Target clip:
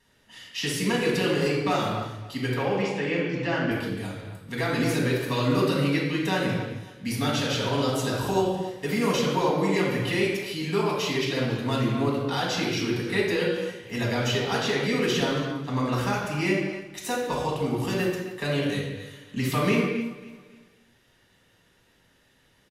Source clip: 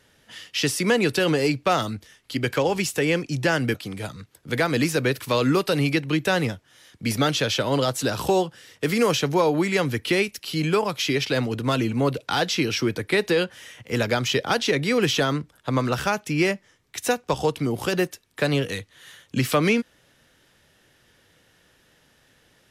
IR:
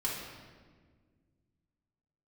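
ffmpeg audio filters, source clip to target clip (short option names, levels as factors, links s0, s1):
-filter_complex "[0:a]asettb=1/sr,asplit=3[s0][s1][s2];[s0]atrim=end=2.544[s3];[s1]atrim=start=2.54:end=3.71,asetpts=PTS-STARTPTS,afade=t=in:d=0.004:c=qsin,afade=t=out:st=1.166:d=0.004:c=qsin,highpass=140,lowpass=3600[s4];[s2]atrim=start=3.706[s5];[s3][s4]acrossfade=d=0.004:c1=hsin:c2=qsin[s6];[s6][s5]acrossfade=d=0.004:c1=qsin:c2=hsin,aecho=1:1:275|550|825:0.141|0.0509|0.0183[s7];[1:a]atrim=start_sample=2205,afade=t=out:st=0.34:d=0.01,atrim=end_sample=15435,asetrate=38808,aresample=44100[s8];[s7][s8]afir=irnorm=-1:irlink=0,volume=0.376"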